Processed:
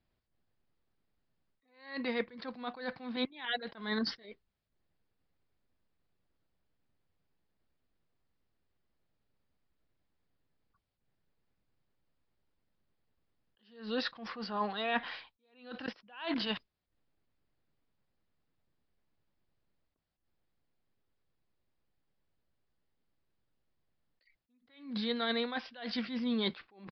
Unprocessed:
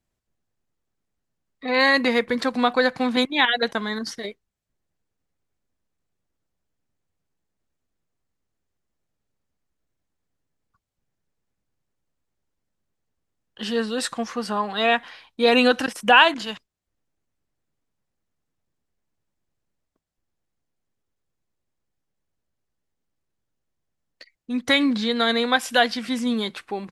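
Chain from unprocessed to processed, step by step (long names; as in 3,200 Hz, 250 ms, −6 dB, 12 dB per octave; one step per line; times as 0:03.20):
reversed playback
downward compressor 16 to 1, threshold −29 dBFS, peak gain reduction 21 dB
reversed playback
downsampling to 11,025 Hz
level that may rise only so fast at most 120 dB per second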